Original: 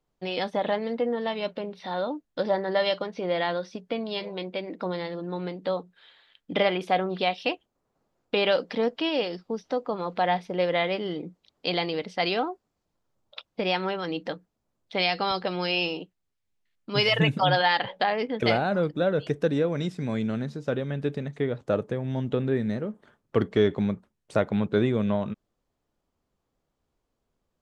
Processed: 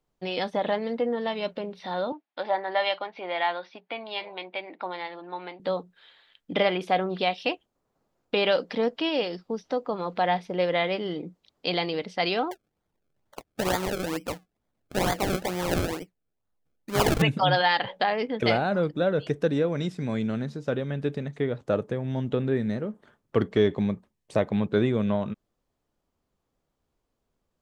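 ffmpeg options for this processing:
-filter_complex "[0:a]asettb=1/sr,asplit=3[s0][s1][s2];[s0]atrim=end=2.124[s3];[s1]atrim=start=2.12:end=5.6,asetpts=PTS-STARTPTS,afade=t=in:d=0.004:c=qsin,afade=t=out:st=3.476:d=0.004:c=qsin,highpass=470,equalizer=f=480:t=q:w=4:g=-9,equalizer=f=830:t=q:w=4:g=7,equalizer=f=2300:t=q:w=4:g=5,lowpass=f=4000:w=0.5412,lowpass=f=4000:w=1.3066[s4];[s2]atrim=start=5.596[s5];[s3][s4]acrossfade=d=0.004:c1=hsin:c2=qsin[s6];[s6][s5]acrossfade=d=0.004:c1=qsin:c2=hsin,asettb=1/sr,asplit=3[s7][s8][s9];[s7]atrim=end=12.514[s10];[s8]atrim=start=12.51:end=17.22,asetpts=PTS-STARTPTS,afade=t=in:d=0.004:c=qsin,afade=t=out:st=4.706:d=0.004:c=qsin,acrusher=samples=32:mix=1:aa=0.000001:lfo=1:lforange=32:lforate=2.2[s11];[s9]atrim=start=17.216[s12];[s10][s11]acrossfade=d=0.004:c1=hsin:c2=qsin[s13];[s13][s12]acrossfade=d=0.004:c1=qsin:c2=hsin,asettb=1/sr,asplit=3[s14][s15][s16];[s14]atrim=end=23.584[s17];[s15]atrim=start=23.58:end=24.7,asetpts=PTS-STARTPTS,afade=t=in:d=0.004:c=qsin,afade=t=out:st=1.116:d=0.004:c=qsin,bandreject=f=1400:w=7[s18];[s16]atrim=start=24.696[s19];[s17][s18]acrossfade=d=0.004:c1=hsin:c2=qsin[s20];[s20][s19]acrossfade=d=0.004:c1=qsin:c2=hsin"

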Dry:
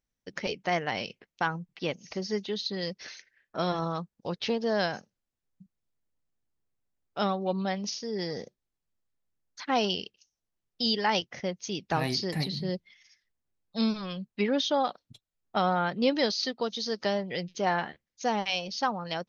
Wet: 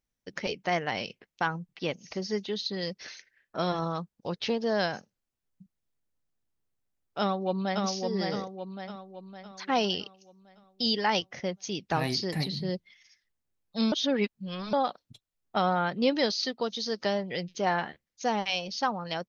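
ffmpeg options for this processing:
-filter_complex "[0:a]asplit=2[s0][s1];[s1]afade=t=in:st=7.19:d=0.01,afade=t=out:st=7.83:d=0.01,aecho=0:1:560|1120|1680|2240|2800|3360|3920:0.668344|0.334172|0.167086|0.083543|0.0417715|0.0208857|0.0104429[s2];[s0][s2]amix=inputs=2:normalize=0,asplit=3[s3][s4][s5];[s3]atrim=end=13.922[s6];[s4]atrim=start=13.918:end=14.732,asetpts=PTS-STARTPTS,areverse[s7];[s5]atrim=start=14.728[s8];[s6][s7]acrossfade=d=0.004:c1=hsin:c2=hsin[s9];[s9][s8]acrossfade=d=0.004:c1=hsin:c2=hsin"

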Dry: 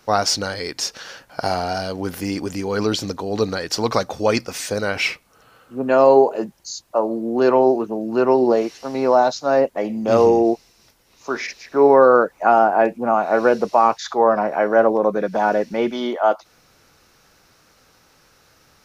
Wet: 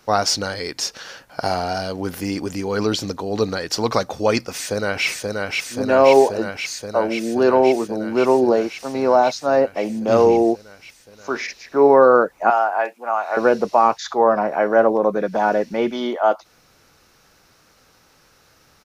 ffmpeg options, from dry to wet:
-filter_complex "[0:a]asplit=2[s0][s1];[s1]afade=t=in:st=4.53:d=0.01,afade=t=out:st=5.07:d=0.01,aecho=0:1:530|1060|1590|2120|2650|3180|3710|4240|4770|5300|5830|6360:0.749894|0.599915|0.479932|0.383946|0.307157|0.245725|0.19658|0.157264|0.125811|0.100649|0.0805193|0.0644154[s2];[s0][s2]amix=inputs=2:normalize=0,asettb=1/sr,asplit=3[s3][s4][s5];[s3]atrim=end=12.504[s6];[s4]atrim=start=12.5:end=13.37,asetpts=PTS-STARTPTS,afade=t=in:d=0.004:c=qsin,afade=t=out:st=0.866:d=0.004:c=qsin,highpass=820[s7];[s5]atrim=start=13.366[s8];[s6][s7]acrossfade=d=0.004:c1=hsin:c2=qsin[s9];[s9][s8]acrossfade=d=0.004:c1=qsin:c2=hsin"

